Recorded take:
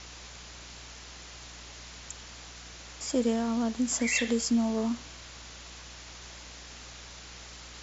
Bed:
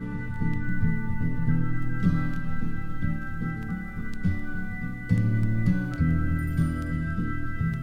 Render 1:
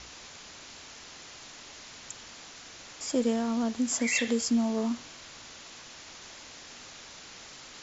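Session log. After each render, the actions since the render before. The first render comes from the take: de-hum 60 Hz, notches 3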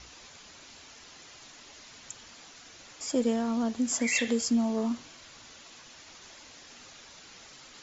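denoiser 6 dB, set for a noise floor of -48 dBFS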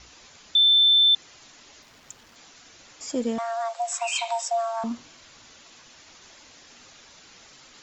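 0.55–1.15 bleep 3540 Hz -14 dBFS; 1.82–2.36 backlash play -47 dBFS; 3.38–4.84 frequency shift +460 Hz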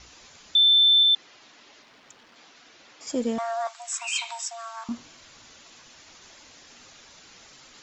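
1.03–3.07 three-band isolator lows -14 dB, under 170 Hz, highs -16 dB, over 5300 Hz; 3.67–4.89 HPF 1100 Hz 24 dB/oct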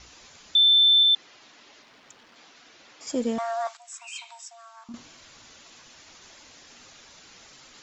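3.77–4.94 gain -10.5 dB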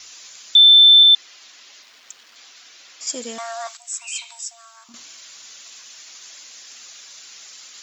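tilt +4.5 dB/oct; notch 880 Hz, Q 16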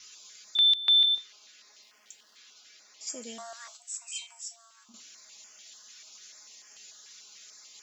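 resonator 210 Hz, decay 0.21 s, harmonics all, mix 80%; stepped notch 6.8 Hz 720–3800 Hz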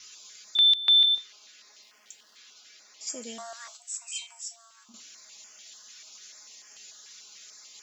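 gain +2 dB

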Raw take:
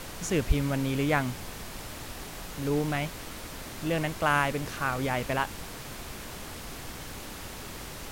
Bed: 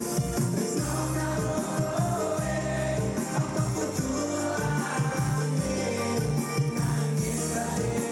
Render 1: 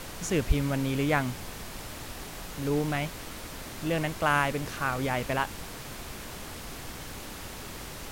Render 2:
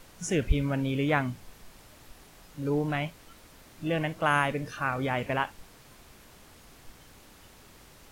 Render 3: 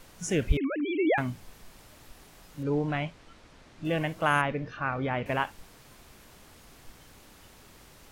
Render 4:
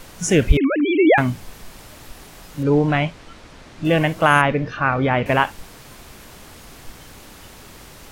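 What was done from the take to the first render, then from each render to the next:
nothing audible
noise print and reduce 13 dB
0.57–1.18 sine-wave speech; 2.63–3.85 air absorption 82 m; 4.41–5.26 air absorption 210 m
gain +11.5 dB; limiter -2 dBFS, peak gain reduction 2.5 dB

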